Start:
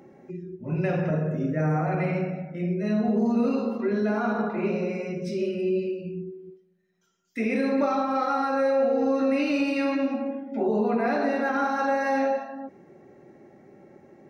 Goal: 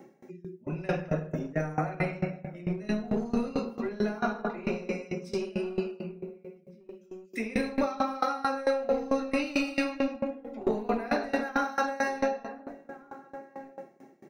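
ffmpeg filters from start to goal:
ffmpeg -i in.wav -filter_complex "[0:a]highpass=frequency=140:width=0.5412,highpass=frequency=140:width=1.3066,highshelf=frequency=4200:gain=11,acrossover=split=510[link_01][link_02];[link_01]aeval=exprs='clip(val(0),-1,0.0447)':channel_layout=same[link_03];[link_03][link_02]amix=inputs=2:normalize=0,asplit=2[link_04][link_05];[link_05]adelay=1458,volume=-15dB,highshelf=frequency=4000:gain=-32.8[link_06];[link_04][link_06]amix=inputs=2:normalize=0,aeval=exprs='val(0)*pow(10,-21*if(lt(mod(4.5*n/s,1),2*abs(4.5)/1000),1-mod(4.5*n/s,1)/(2*abs(4.5)/1000),(mod(4.5*n/s,1)-2*abs(4.5)/1000)/(1-2*abs(4.5)/1000))/20)':channel_layout=same,volume=2dB" out.wav

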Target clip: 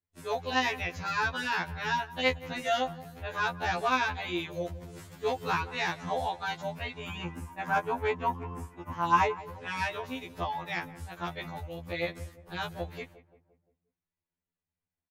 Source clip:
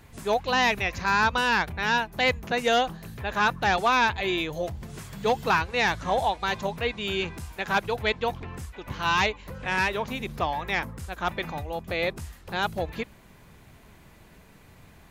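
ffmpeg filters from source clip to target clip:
ffmpeg -i in.wav -filter_complex "[0:a]agate=range=-36dB:threshold=-41dB:ratio=16:detection=peak,asettb=1/sr,asplit=3[link_01][link_02][link_03];[link_01]atrim=end=6.984[link_04];[link_02]atrim=start=6.98:end=9.4,asetpts=PTS-STARTPTS,afade=type=in:duration=0.004:curve=qsin,afade=type=out:start_time=2.416:duration=0.004:curve=qsin,equalizer=frequency=250:width_type=o:width=0.67:gain=10,equalizer=frequency=1000:width_type=o:width=0.67:gain=10,equalizer=frequency=4000:width_type=o:width=0.67:gain=-12[link_05];[link_03]atrim=start=9.396[link_06];[link_04][link_05]acrossfade=duration=0.004:curve1=hsin:curve2=qsin[link_07];[link_07][link_06]acrossfade=duration=0.004:curve1=qsin:curve2=hsin,asplit=2[link_08][link_09];[link_09]adelay=174,lowpass=frequency=1300:poles=1,volume=-16dB,asplit=2[link_10][link_11];[link_11]adelay=174,lowpass=frequency=1300:poles=1,volume=0.52,asplit=2[link_12][link_13];[link_13]adelay=174,lowpass=frequency=1300:poles=1,volume=0.52,asplit=2[link_14][link_15];[link_15]adelay=174,lowpass=frequency=1300:poles=1,volume=0.52,asplit=2[link_16][link_17];[link_17]adelay=174,lowpass=frequency=1300:poles=1,volume=0.52[link_18];[link_08][link_10][link_12][link_14][link_16][link_18]amix=inputs=6:normalize=0,afftfilt=real='re*2*eq(mod(b,4),0)':imag='im*2*eq(mod(b,4),0)':win_size=2048:overlap=0.75,volume=-4.5dB" out.wav

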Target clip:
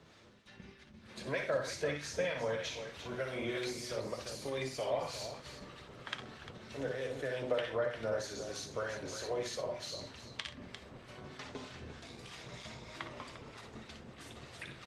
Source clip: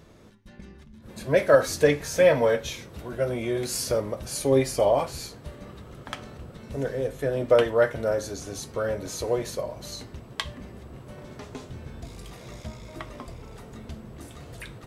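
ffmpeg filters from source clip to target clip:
ffmpeg -i in.wav -filter_complex "[0:a]tiltshelf=frequency=1300:gain=-6.5,bandreject=frequency=50:width_type=h:width=6,bandreject=frequency=100:width_type=h:width=6,bandreject=frequency=150:width_type=h:width=6,bandreject=frequency=200:width_type=h:width=6,bandreject=frequency=250:width_type=h:width=6,bandreject=frequency=300:width_type=h:width=6,bandreject=frequency=350:width_type=h:width=6,acrossover=split=160|550[link_01][link_02][link_03];[link_01]acompressor=threshold=-47dB:ratio=4[link_04];[link_02]acompressor=threshold=-39dB:ratio=4[link_05];[link_03]acompressor=threshold=-35dB:ratio=4[link_06];[link_04][link_05][link_06]amix=inputs=3:normalize=0,lowpass=4900,aecho=1:1:54|62|74|89|127|349:0.316|0.422|0.126|0.2|0.119|0.335,acrossover=split=1000[link_07][link_08];[link_07]aeval=exprs='val(0)*(1-0.5/2+0.5/2*cos(2*PI*3.2*n/s))':channel_layout=same[link_09];[link_08]aeval=exprs='val(0)*(1-0.5/2-0.5/2*cos(2*PI*3.2*n/s))':channel_layout=same[link_10];[link_09][link_10]amix=inputs=2:normalize=0,highpass=75" -ar 48000 -c:a libopus -b:a 20k out.opus

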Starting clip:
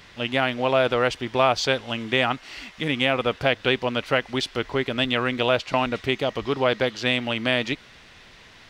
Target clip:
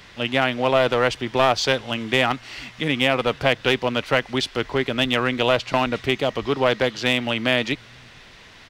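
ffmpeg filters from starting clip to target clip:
ffmpeg -i in.wav -filter_complex "[0:a]acrossover=split=140[link_01][link_02];[link_01]aecho=1:1:455:0.2[link_03];[link_02]aeval=exprs='clip(val(0),-1,0.141)':channel_layout=same[link_04];[link_03][link_04]amix=inputs=2:normalize=0,volume=2.5dB" out.wav

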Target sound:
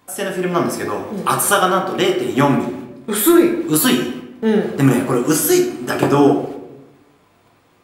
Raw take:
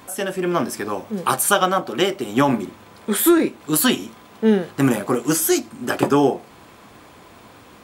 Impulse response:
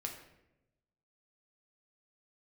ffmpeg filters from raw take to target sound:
-filter_complex "[0:a]agate=range=-13dB:threshold=-42dB:ratio=16:detection=peak[link_01];[1:a]atrim=start_sample=2205[link_02];[link_01][link_02]afir=irnorm=-1:irlink=0,volume=4dB"

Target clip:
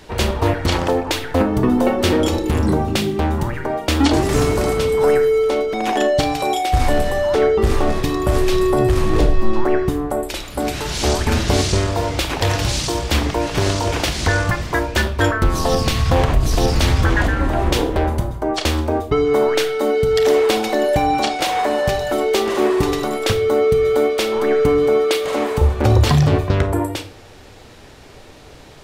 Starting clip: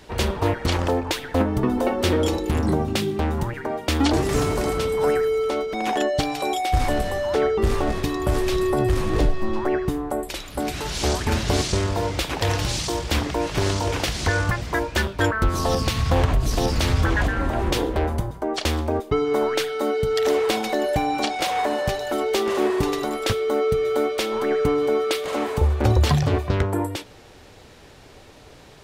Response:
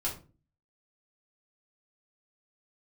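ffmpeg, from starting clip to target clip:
-filter_complex "[0:a]asplit=2[link_01][link_02];[1:a]atrim=start_sample=2205,asetrate=38808,aresample=44100,adelay=29[link_03];[link_02][link_03]afir=irnorm=-1:irlink=0,volume=-15dB[link_04];[link_01][link_04]amix=inputs=2:normalize=0,volume=4dB"

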